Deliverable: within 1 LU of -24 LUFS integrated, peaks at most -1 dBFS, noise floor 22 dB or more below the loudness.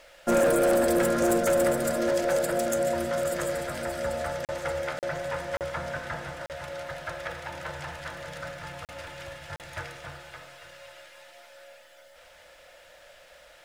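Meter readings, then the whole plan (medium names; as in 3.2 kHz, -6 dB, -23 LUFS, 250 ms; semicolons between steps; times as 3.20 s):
clipped samples 0.9%; clipping level -18.5 dBFS; dropouts 6; longest dropout 38 ms; loudness -28.0 LUFS; peak level -18.5 dBFS; loudness target -24.0 LUFS
-> clip repair -18.5 dBFS; interpolate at 4.45/4.99/5.57/6.46/8.85/9.56 s, 38 ms; trim +4 dB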